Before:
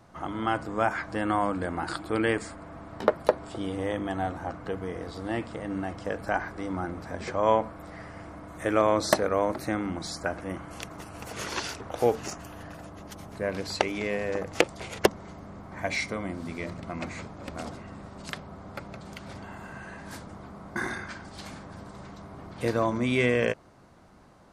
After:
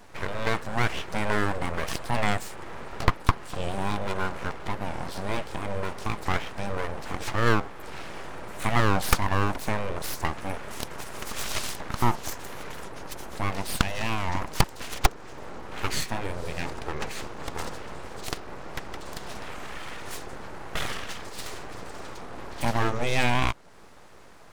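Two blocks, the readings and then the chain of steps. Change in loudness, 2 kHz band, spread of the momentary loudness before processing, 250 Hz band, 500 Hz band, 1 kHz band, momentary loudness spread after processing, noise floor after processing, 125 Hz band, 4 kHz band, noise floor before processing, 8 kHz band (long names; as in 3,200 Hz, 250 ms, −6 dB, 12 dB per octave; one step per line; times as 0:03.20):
−1.0 dB, +2.0 dB, 18 LU, −2.0 dB, −5.0 dB, +1.5 dB, 15 LU, −42 dBFS, +6.0 dB, +4.0 dB, −46 dBFS, +4.5 dB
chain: high-pass filter 200 Hz 6 dB per octave
parametric band 1,500 Hz −3.5 dB 2.4 octaves
in parallel at +2 dB: downward compressor, threshold −39 dBFS, peak gain reduction 21.5 dB
on the sum: full-wave rectification
wow of a warped record 45 rpm, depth 160 cents
level +3.5 dB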